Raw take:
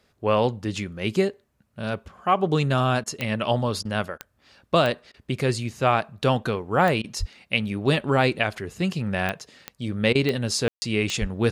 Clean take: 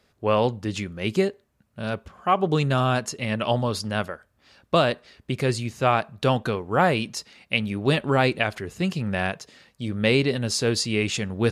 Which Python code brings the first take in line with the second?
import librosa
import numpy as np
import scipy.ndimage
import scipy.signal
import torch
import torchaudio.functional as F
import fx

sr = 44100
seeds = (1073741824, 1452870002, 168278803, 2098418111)

y = fx.fix_declick_ar(x, sr, threshold=10.0)
y = fx.fix_deplosive(y, sr, at_s=(7.19, 11.2))
y = fx.fix_ambience(y, sr, seeds[0], print_start_s=1.3, print_end_s=1.8, start_s=10.68, end_s=10.82)
y = fx.fix_interpolate(y, sr, at_s=(3.04, 3.83, 4.18, 5.12, 7.02, 10.13), length_ms=20.0)